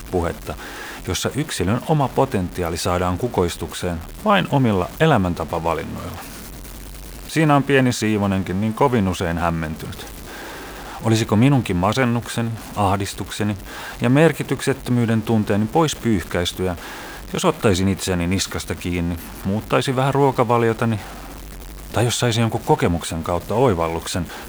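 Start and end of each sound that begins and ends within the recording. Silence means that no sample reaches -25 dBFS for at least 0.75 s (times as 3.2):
7.3–10
11.03–20.98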